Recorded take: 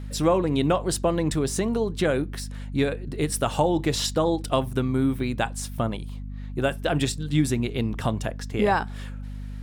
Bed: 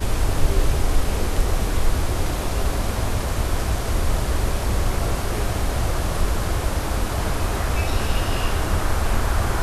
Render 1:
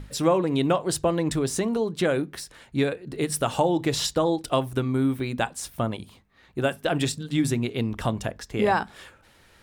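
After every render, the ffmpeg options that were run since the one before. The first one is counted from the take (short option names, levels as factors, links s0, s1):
-af "bandreject=f=50:t=h:w=6,bandreject=f=100:t=h:w=6,bandreject=f=150:t=h:w=6,bandreject=f=200:t=h:w=6,bandreject=f=250:t=h:w=6"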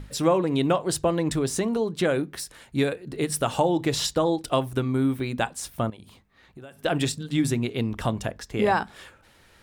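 -filter_complex "[0:a]asettb=1/sr,asplit=3[s0][s1][s2];[s0]atrim=end=2.394[s3];[s1]atrim=start=2.39:end=3.11,asetpts=PTS-STARTPTS,afade=t=in:d=0.004:c=qsin,afade=t=out:st=0.716:d=0.004:c=qsin,equalizer=f=13000:w=0.5:g=6.5[s4];[s2]atrim=start=3.106[s5];[s3][s4]acrossfade=d=0.004:c1=hsin:c2=qsin[s6];[s6][s5]acrossfade=d=0.004:c1=qsin:c2=hsin,asettb=1/sr,asplit=3[s7][s8][s9];[s7]atrim=end=5.904[s10];[s8]atrim=start=5.9:end=6.79,asetpts=PTS-STARTPTS,afade=t=in:d=0.004:c=qsin,afade=t=out:st=0.886:d=0.004:c=qsin,acompressor=threshold=0.00891:ratio=6:attack=3.2:release=140:knee=1:detection=peak[s11];[s9]atrim=start=6.786[s12];[s10][s11]acrossfade=d=0.004:c1=hsin:c2=qsin[s13];[s13][s12]acrossfade=d=0.004:c1=qsin:c2=hsin"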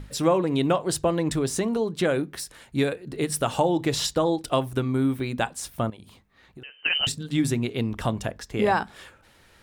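-filter_complex "[0:a]asettb=1/sr,asplit=3[s0][s1][s2];[s0]atrim=end=6.634[s3];[s1]atrim=start=6.63:end=7.07,asetpts=PTS-STARTPTS,afade=t=in:d=0.004:c=qsin,afade=t=out:st=0.436:d=0.004:c=qsin,lowpass=f=2700:t=q:w=0.5098,lowpass=f=2700:t=q:w=0.6013,lowpass=f=2700:t=q:w=0.9,lowpass=f=2700:t=q:w=2.563,afreqshift=-3200[s4];[s2]atrim=start=7.066[s5];[s3][s4]acrossfade=d=0.004:c1=hsin:c2=qsin[s6];[s6][s5]acrossfade=d=0.004:c1=qsin:c2=hsin"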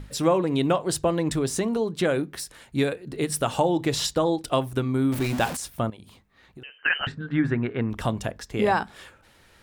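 -filter_complex "[0:a]asettb=1/sr,asplit=3[s0][s1][s2];[s0]atrim=end=5.124[s3];[s1]atrim=start=5.12:end=5.57,asetpts=PTS-STARTPTS,afade=t=in:d=0.004:c=qsin,afade=t=out:st=0.446:d=0.004:c=qsin,aeval=exprs='val(0)+0.5*0.0447*sgn(val(0))':c=same[s4];[s2]atrim=start=5.566[s5];[s3][s4]acrossfade=d=0.004:c1=hsin:c2=qsin[s6];[s6][s5]acrossfade=d=0.004:c1=qsin:c2=hsin,asettb=1/sr,asplit=3[s7][s8][s9];[s7]atrim=end=6.784[s10];[s8]atrim=start=6.78:end=7.9,asetpts=PTS-STARTPTS,afade=t=in:d=0.004:c=qsin,afade=t=out:st=1.116:d=0.004:c=qsin,lowpass=f=1600:t=q:w=4.1[s11];[s9]atrim=start=7.896[s12];[s10][s11]acrossfade=d=0.004:c1=hsin:c2=qsin[s13];[s13][s12]acrossfade=d=0.004:c1=qsin:c2=hsin"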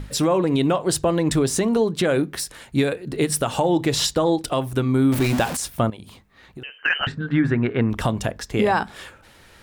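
-af "alimiter=limit=0.158:level=0:latency=1:release=164,acontrast=63"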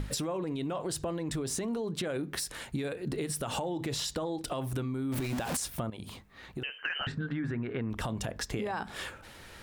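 -af "alimiter=limit=0.119:level=0:latency=1:release=56,acompressor=threshold=0.0282:ratio=6"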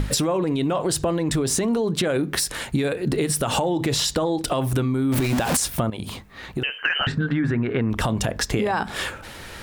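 -af "volume=3.76"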